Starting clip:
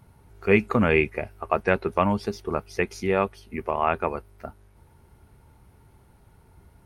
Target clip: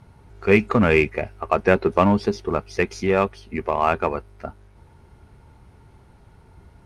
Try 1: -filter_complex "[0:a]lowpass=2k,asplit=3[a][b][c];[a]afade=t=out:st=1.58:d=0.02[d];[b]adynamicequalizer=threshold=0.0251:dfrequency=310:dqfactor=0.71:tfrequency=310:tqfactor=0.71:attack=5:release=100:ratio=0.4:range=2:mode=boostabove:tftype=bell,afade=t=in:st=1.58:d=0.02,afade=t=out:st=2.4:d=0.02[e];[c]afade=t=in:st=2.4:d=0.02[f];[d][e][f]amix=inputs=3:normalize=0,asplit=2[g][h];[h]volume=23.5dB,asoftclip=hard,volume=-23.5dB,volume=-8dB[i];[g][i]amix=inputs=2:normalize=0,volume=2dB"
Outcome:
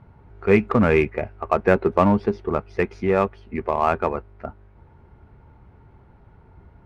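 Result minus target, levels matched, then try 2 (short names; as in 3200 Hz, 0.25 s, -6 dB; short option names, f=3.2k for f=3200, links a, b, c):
8000 Hz band -10.0 dB
-filter_complex "[0:a]lowpass=7.2k,asplit=3[a][b][c];[a]afade=t=out:st=1.58:d=0.02[d];[b]adynamicequalizer=threshold=0.0251:dfrequency=310:dqfactor=0.71:tfrequency=310:tqfactor=0.71:attack=5:release=100:ratio=0.4:range=2:mode=boostabove:tftype=bell,afade=t=in:st=1.58:d=0.02,afade=t=out:st=2.4:d=0.02[e];[c]afade=t=in:st=2.4:d=0.02[f];[d][e][f]amix=inputs=3:normalize=0,asplit=2[g][h];[h]volume=23.5dB,asoftclip=hard,volume=-23.5dB,volume=-8dB[i];[g][i]amix=inputs=2:normalize=0,volume=2dB"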